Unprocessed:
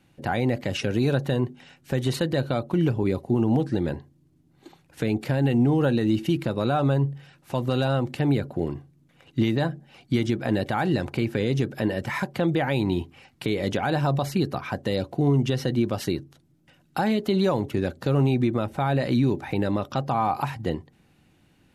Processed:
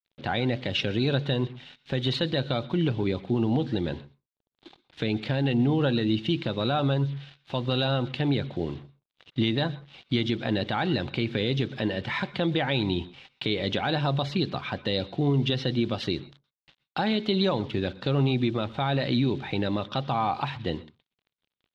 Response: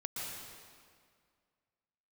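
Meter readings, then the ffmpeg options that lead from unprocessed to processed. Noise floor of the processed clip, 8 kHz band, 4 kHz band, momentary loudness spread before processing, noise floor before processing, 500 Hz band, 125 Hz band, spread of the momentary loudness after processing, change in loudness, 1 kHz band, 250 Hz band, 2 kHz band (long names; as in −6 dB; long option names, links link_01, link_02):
below −85 dBFS, below −10 dB, +6.0 dB, 8 LU, −62 dBFS, −3.0 dB, −3.0 dB, 8 LU, −2.0 dB, −2.5 dB, −3.0 dB, 0.0 dB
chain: -filter_complex "[0:a]acrusher=bits=7:mix=0:aa=0.5,lowpass=frequency=3600:width_type=q:width=3.6,asplit=2[link_01][link_02];[1:a]atrim=start_sample=2205,atrim=end_sample=6174[link_03];[link_02][link_03]afir=irnorm=-1:irlink=0,volume=-11dB[link_04];[link_01][link_04]amix=inputs=2:normalize=0,volume=-4.5dB"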